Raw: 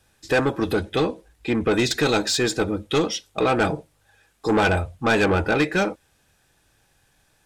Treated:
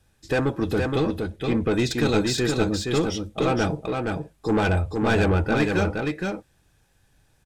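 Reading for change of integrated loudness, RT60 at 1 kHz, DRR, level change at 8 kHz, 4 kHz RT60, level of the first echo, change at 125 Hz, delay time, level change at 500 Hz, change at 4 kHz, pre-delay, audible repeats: -2.0 dB, none, none, -4.0 dB, none, -4.0 dB, +3.5 dB, 0.469 s, -1.5 dB, -4.0 dB, none, 1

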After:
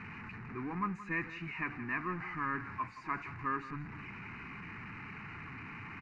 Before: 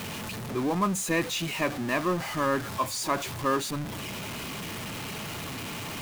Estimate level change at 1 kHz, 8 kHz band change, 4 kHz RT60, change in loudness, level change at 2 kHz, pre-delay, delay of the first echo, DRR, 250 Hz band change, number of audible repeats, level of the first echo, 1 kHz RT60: -8.0 dB, under -35 dB, none, -10.0 dB, -5.5 dB, none, 0.172 s, none, -11.0 dB, 1, -14.5 dB, none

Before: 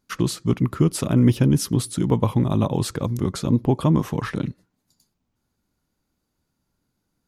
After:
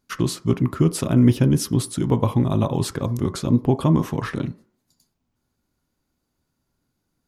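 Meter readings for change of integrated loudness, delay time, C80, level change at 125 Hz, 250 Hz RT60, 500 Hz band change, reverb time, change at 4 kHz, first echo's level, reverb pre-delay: +0.5 dB, none, 23.5 dB, +0.5 dB, 0.45 s, +1.0 dB, 0.45 s, 0.0 dB, none, 3 ms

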